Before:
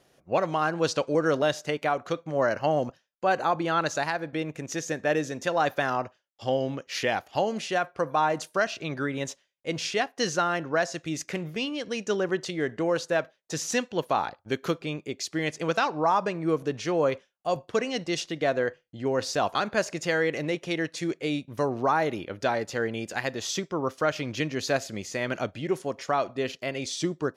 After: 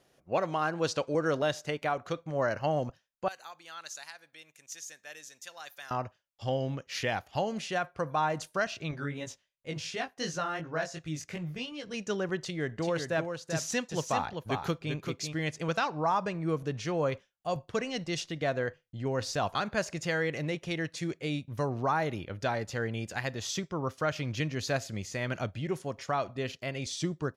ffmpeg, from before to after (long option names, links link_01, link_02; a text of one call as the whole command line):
ffmpeg -i in.wav -filter_complex "[0:a]asettb=1/sr,asplit=3[link_01][link_02][link_03];[link_01]atrim=end=3.284[link_04];[link_02]atrim=start=3.28:end=5.91,asetpts=PTS-STARTPTS,afade=type=in:duration=0.004:curve=qsin,afade=type=out:start_time=2.626:duration=0.004:curve=qsin,aderivative[link_05];[link_03]atrim=start=5.906[link_06];[link_04][link_05]acrossfade=duration=0.004:curve1=hsin:curve2=qsin[link_07];[link_07][link_06]acrossfade=duration=0.004:curve1=qsin:curve2=hsin,asettb=1/sr,asplit=3[link_08][link_09][link_10];[link_08]atrim=end=8.914[link_11];[link_09]atrim=start=8.91:end=11.94,asetpts=PTS-STARTPTS,afade=type=in:duration=0.004:curve=qsin,afade=type=out:start_time=3.026:duration=0.004:curve=qsin,flanger=delay=17.5:depth=3.2:speed=2.8[link_12];[link_10]atrim=start=11.936[link_13];[link_11][link_12]acrossfade=duration=0.004:curve1=hsin:curve2=qsin[link_14];[link_14][link_13]acrossfade=duration=0.004:curve1=qsin:curve2=hsin,asplit=3[link_15][link_16][link_17];[link_15]afade=type=out:start_time=12.79:duration=0.02[link_18];[link_16]aecho=1:1:388:0.501,afade=type=in:start_time=12.79:duration=0.02,afade=type=out:start_time=15.32:duration=0.02[link_19];[link_17]afade=type=in:start_time=15.32:duration=0.02[link_20];[link_18][link_19][link_20]amix=inputs=3:normalize=0,asubboost=boost=3.5:cutoff=150,volume=-4dB" out.wav